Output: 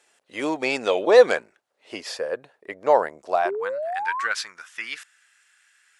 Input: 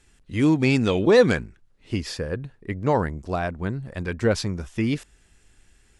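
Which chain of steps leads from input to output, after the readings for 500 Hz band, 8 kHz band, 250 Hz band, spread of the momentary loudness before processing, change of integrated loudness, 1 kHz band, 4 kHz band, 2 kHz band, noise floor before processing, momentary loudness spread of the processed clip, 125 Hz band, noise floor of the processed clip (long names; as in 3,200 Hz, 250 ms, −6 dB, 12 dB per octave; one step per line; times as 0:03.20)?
+2.5 dB, 0.0 dB, −11.0 dB, 14 LU, +0.5 dB, +6.0 dB, +0.5 dB, +2.5 dB, −60 dBFS, 19 LU, below −25 dB, −71 dBFS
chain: high-pass filter sweep 600 Hz → 1,500 Hz, 0:03.28–0:03.89
sound drawn into the spectrogram rise, 0:03.45–0:04.27, 360–1,200 Hz −28 dBFS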